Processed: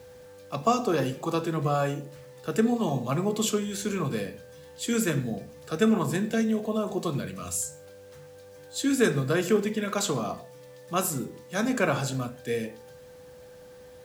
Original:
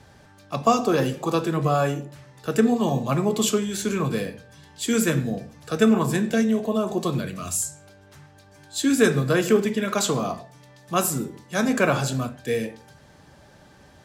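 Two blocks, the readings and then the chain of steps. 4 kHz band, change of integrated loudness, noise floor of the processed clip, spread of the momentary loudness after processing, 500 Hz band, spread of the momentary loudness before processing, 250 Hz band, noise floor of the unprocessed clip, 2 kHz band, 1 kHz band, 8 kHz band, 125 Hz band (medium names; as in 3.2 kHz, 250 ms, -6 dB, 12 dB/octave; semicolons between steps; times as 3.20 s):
-4.5 dB, -4.5 dB, -49 dBFS, 13 LU, -4.5 dB, 11 LU, -4.5 dB, -52 dBFS, -4.5 dB, -4.5 dB, -4.5 dB, -4.5 dB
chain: whistle 500 Hz -42 dBFS; bit crusher 9-bit; trim -4.5 dB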